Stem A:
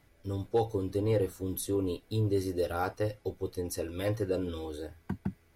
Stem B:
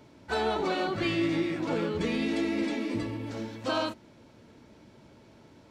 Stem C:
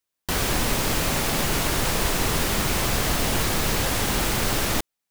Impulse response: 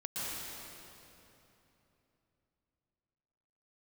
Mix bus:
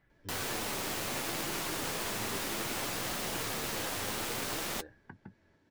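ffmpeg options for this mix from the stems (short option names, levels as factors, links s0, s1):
-filter_complex "[0:a]lowpass=3000,acompressor=threshold=0.0126:ratio=6,volume=0.75[s0];[1:a]adelay=100,volume=0.266[s1];[2:a]highpass=f=270:p=1,aeval=exprs='0.251*(cos(1*acos(clip(val(0)/0.251,-1,1)))-cos(1*PI/2))+0.0282*(cos(3*acos(clip(val(0)/0.251,-1,1)))-cos(3*PI/2))+0.01*(cos(6*acos(clip(val(0)/0.251,-1,1)))-cos(6*PI/2))':c=same,volume=0.631[s2];[s0][s1]amix=inputs=2:normalize=0,equalizer=f=1700:w=6.9:g=13,acompressor=threshold=0.0112:ratio=6,volume=1[s3];[s2][s3]amix=inputs=2:normalize=0,flanger=delay=5:depth=5.7:regen=-50:speed=0.63:shape=triangular"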